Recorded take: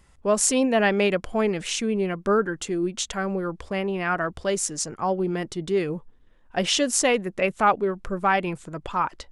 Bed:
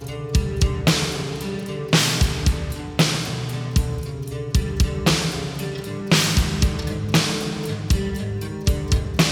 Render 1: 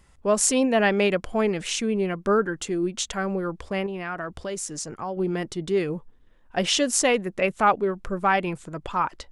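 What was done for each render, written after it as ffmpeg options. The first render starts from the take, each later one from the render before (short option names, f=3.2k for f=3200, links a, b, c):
-filter_complex "[0:a]asettb=1/sr,asplit=3[a][b][c];[a]atrim=end=3.864[d];[b]atrim=start=3.86:end=5.17,asetpts=PTS-STARTPTS,afade=t=in:d=0.004:c=qsin,afade=t=out:st=1.306:d=0.004:c=qsin,acompressor=threshold=-30dB:ratio=2.5:attack=3.2:release=140:knee=1:detection=peak[e];[c]atrim=start=5.166[f];[d][e]acrossfade=d=0.004:c1=hsin:c2=qsin[g];[g][f]acrossfade=d=0.004:c1=qsin:c2=hsin"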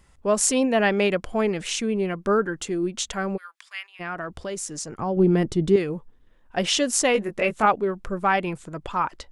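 -filter_complex "[0:a]asplit=3[a][b][c];[a]afade=t=out:st=3.36:d=0.02[d];[b]highpass=f=1.5k:w=0.5412,highpass=f=1.5k:w=1.3066,afade=t=in:st=3.36:d=0.02,afade=t=out:st=3.99:d=0.02[e];[c]afade=t=in:st=3.99:d=0.02[f];[d][e][f]amix=inputs=3:normalize=0,asettb=1/sr,asplit=3[g][h][i];[g]atrim=end=4.984[j];[h]atrim=start=4.98:end=5.76,asetpts=PTS-STARTPTS,afade=t=in:d=0.004:c=qsin,afade=t=out:st=0.776:d=0.004:c=qsin,lowshelf=f=470:g=11[k];[i]atrim=start=5.756[l];[j][k]acrossfade=d=0.004:c1=hsin:c2=qsin[m];[m][l]acrossfade=d=0.004:c1=qsin:c2=hsin,asettb=1/sr,asplit=3[n][o][p];[n]atrim=end=7.134[q];[o]atrim=start=7.13:end=7.66,asetpts=PTS-STARTPTS,afade=t=in:d=0.004:c=qsin,afade=t=out:st=0.526:d=0.004:c=qsin,asplit=2[r][s];[s]adelay=19,volume=-5dB[t];[r][t]amix=inputs=2:normalize=0,atrim=end_sample=23373[u];[p]atrim=start=7.656[v];[q][u]acrossfade=d=0.004:c1=hsin:c2=qsin[w];[w][v]acrossfade=d=0.004:c1=qsin:c2=hsin"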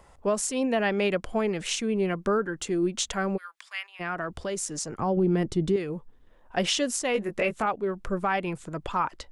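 -filter_complex "[0:a]acrossover=split=630|770[a][b][c];[b]acompressor=mode=upward:threshold=-46dB:ratio=2.5[d];[a][d][c]amix=inputs=3:normalize=0,alimiter=limit=-15.5dB:level=0:latency=1:release=398"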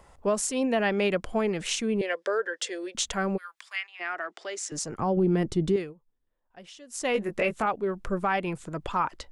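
-filter_complex "[0:a]asettb=1/sr,asplit=3[a][b][c];[a]atrim=end=2.014[d];[b]atrim=start=2.01:end=2.95,asetpts=PTS-STARTPTS,afade=t=in:d=0.004:c=qsin,afade=t=out:st=0.936:d=0.004:c=qsin,highpass=f=480:w=0.5412,highpass=f=480:w=1.3066,equalizer=f=510:t=q:w=4:g=9,equalizer=f=810:t=q:w=4:g=-6,equalizer=f=1.2k:t=q:w=4:g=-7,equalizer=f=1.8k:t=q:w=4:g=9,equalizer=f=3.4k:t=q:w=4:g=7,equalizer=f=5.1k:t=q:w=4:g=7,lowpass=f=9.8k:w=0.5412,lowpass=f=9.8k:w=1.3066[e];[c]atrim=start=2.946[f];[d][e]acrossfade=d=0.004:c1=hsin:c2=qsin[g];[g][f]acrossfade=d=0.004:c1=qsin:c2=hsin,asettb=1/sr,asplit=3[h][i][j];[h]atrim=end=3.764[k];[i]atrim=start=3.76:end=4.72,asetpts=PTS-STARTPTS,afade=t=in:d=0.004:c=qsin,afade=t=out:st=0.956:d=0.004:c=qsin,highpass=f=400:w=0.5412,highpass=f=400:w=1.3066,equalizer=f=500:t=q:w=4:g=-10,equalizer=f=1k:t=q:w=4:g=-6,equalizer=f=2k:t=q:w=4:g=5,lowpass=f=7.8k:w=0.5412,lowpass=f=7.8k:w=1.3066[l];[j]atrim=start=4.716[m];[k][l]acrossfade=d=0.004:c1=hsin:c2=qsin[n];[n][m]acrossfade=d=0.004:c1=qsin:c2=hsin,asplit=3[o][p][q];[o]atrim=end=5.94,asetpts=PTS-STARTPTS,afade=t=out:st=5.79:d=0.15:silence=0.0794328[r];[p]atrim=start=5.94:end=6.9,asetpts=PTS-STARTPTS,volume=-22dB[s];[q]atrim=start=6.9,asetpts=PTS-STARTPTS,afade=t=in:d=0.15:silence=0.0794328[t];[r][s][t]concat=n=3:v=0:a=1"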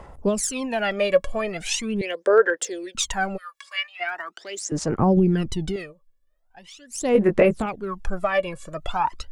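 -af "aphaser=in_gain=1:out_gain=1:delay=1.8:decay=0.78:speed=0.41:type=sinusoidal"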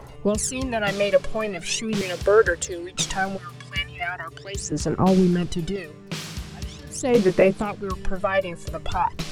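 -filter_complex "[1:a]volume=-15dB[a];[0:a][a]amix=inputs=2:normalize=0"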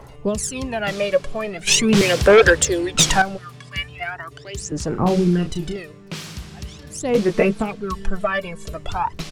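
-filter_complex "[0:a]asettb=1/sr,asplit=3[a][b][c];[a]atrim=end=1.674[d];[b]atrim=start=1.67:end=3.22,asetpts=PTS-STARTPTS,afade=t=in:d=0.004:c=qsin,afade=t=out:st=1.546:d=0.004:c=qsin,aeval=exprs='0.501*sin(PI/2*2.24*val(0)/0.501)':c=same[e];[c]atrim=start=3.216[f];[d][e]acrossfade=d=0.004:c1=hsin:c2=qsin[g];[g][f]acrossfade=d=0.004:c1=qsin:c2=hsin,asplit=3[h][i][j];[h]afade=t=out:st=4.93:d=0.02[k];[i]asplit=2[l][m];[m]adelay=34,volume=-6.5dB[n];[l][n]amix=inputs=2:normalize=0,afade=t=in:st=4.93:d=0.02,afade=t=out:st=5.77:d=0.02[o];[j]afade=t=in:st=5.77:d=0.02[p];[k][o][p]amix=inputs=3:normalize=0,asettb=1/sr,asplit=3[q][r][s];[q]atrim=end=7.344[t];[r]atrim=start=7.34:end=8.74,asetpts=PTS-STARTPTS,afade=t=in:d=0.004:c=qsin,afade=t=out:st=1.396:d=0.004:c=qsin,aecho=1:1:4.5:0.66,atrim=end_sample=61740[u];[s]atrim=start=8.736[v];[t][u]acrossfade=d=0.004:c1=hsin:c2=qsin[w];[w][v]acrossfade=d=0.004:c1=qsin:c2=hsin"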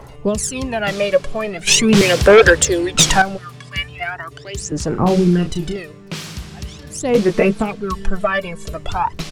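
-af "volume=3.5dB,alimiter=limit=-3dB:level=0:latency=1"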